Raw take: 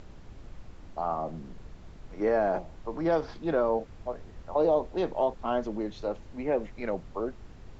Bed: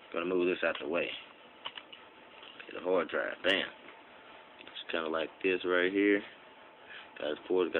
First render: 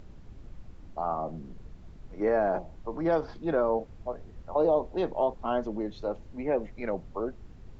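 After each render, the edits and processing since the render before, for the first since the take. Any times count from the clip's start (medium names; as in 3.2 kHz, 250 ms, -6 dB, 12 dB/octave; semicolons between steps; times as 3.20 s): noise reduction 6 dB, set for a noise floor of -48 dBFS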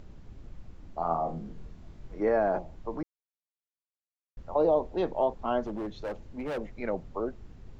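0.98–2.19 s: flutter echo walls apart 4.1 m, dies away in 0.25 s; 3.03–4.37 s: mute; 5.64–6.58 s: overload inside the chain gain 30.5 dB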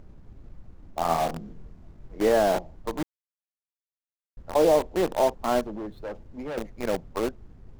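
median filter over 15 samples; in parallel at -3 dB: bit crusher 5-bit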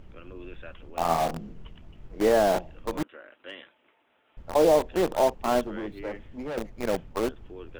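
add bed -14 dB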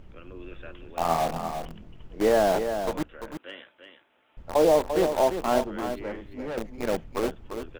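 delay 344 ms -8 dB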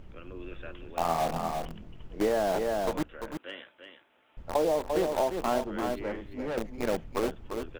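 compression 6:1, threshold -23 dBFS, peak gain reduction 8 dB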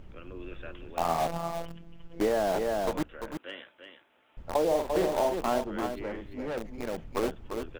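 1.27–2.20 s: robot voice 168 Hz; 4.66–5.36 s: doubling 49 ms -6 dB; 5.86–6.98 s: compression 2.5:1, threshold -31 dBFS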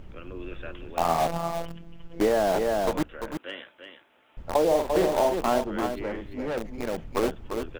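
trim +4 dB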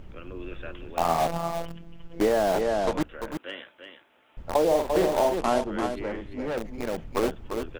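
2.61–3.01 s: low-pass 7.9 kHz; 5.38–6.46 s: low-pass 11 kHz 24 dB/octave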